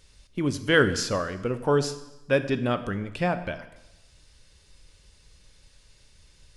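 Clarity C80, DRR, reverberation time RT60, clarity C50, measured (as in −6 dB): 14.5 dB, 10.5 dB, 1.0 s, 12.5 dB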